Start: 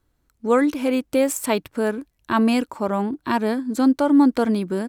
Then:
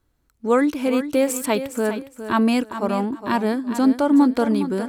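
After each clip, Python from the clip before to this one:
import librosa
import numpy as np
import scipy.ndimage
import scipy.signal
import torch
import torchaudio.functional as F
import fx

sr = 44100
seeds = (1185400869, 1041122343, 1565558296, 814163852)

y = fx.echo_feedback(x, sr, ms=411, feedback_pct=22, wet_db=-11)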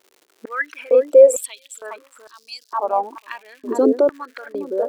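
y = fx.envelope_sharpen(x, sr, power=2.0)
y = fx.dmg_crackle(y, sr, seeds[0], per_s=210.0, level_db=-40.0)
y = fx.filter_held_highpass(y, sr, hz=2.2, low_hz=390.0, high_hz=4900.0)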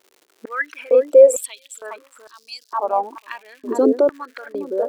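y = x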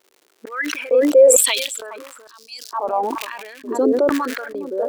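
y = fx.sustainer(x, sr, db_per_s=42.0)
y = y * 10.0 ** (-2.0 / 20.0)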